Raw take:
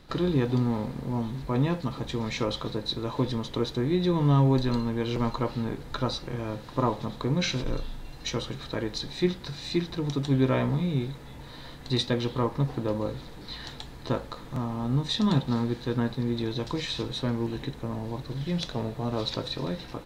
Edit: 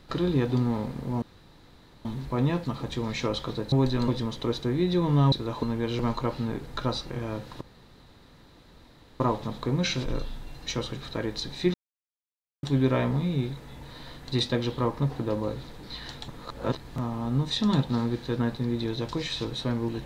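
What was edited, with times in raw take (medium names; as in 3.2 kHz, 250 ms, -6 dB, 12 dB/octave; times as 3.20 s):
1.22 s: insert room tone 0.83 s
2.89–3.20 s: swap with 4.44–4.80 s
6.78 s: insert room tone 1.59 s
9.32–10.21 s: mute
13.86–14.54 s: reverse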